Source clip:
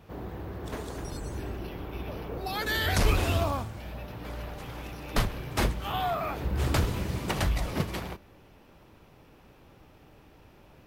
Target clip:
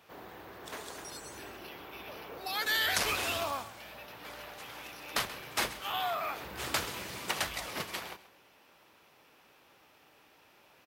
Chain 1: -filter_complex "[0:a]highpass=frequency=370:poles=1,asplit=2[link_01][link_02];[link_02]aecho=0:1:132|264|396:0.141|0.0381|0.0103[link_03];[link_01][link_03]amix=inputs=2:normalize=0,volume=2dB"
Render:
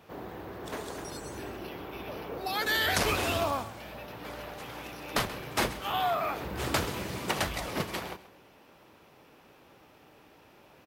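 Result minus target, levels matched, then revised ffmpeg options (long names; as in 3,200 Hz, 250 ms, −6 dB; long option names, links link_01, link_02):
500 Hz band +4.5 dB
-filter_complex "[0:a]highpass=frequency=1400:poles=1,asplit=2[link_01][link_02];[link_02]aecho=0:1:132|264|396:0.141|0.0381|0.0103[link_03];[link_01][link_03]amix=inputs=2:normalize=0,volume=2dB"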